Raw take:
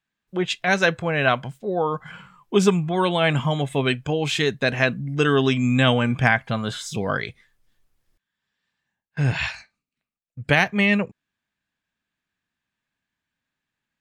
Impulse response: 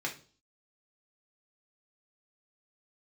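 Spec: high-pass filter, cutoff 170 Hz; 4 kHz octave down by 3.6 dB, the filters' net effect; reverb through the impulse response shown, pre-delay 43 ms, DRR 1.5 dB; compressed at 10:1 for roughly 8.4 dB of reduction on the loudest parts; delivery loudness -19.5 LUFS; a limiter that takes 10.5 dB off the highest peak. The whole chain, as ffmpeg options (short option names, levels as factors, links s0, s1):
-filter_complex "[0:a]highpass=170,equalizer=f=4000:t=o:g=-5,acompressor=threshold=0.0891:ratio=10,alimiter=limit=0.112:level=0:latency=1,asplit=2[s0][s1];[1:a]atrim=start_sample=2205,adelay=43[s2];[s1][s2]afir=irnorm=-1:irlink=0,volume=0.501[s3];[s0][s3]amix=inputs=2:normalize=0,volume=2.82"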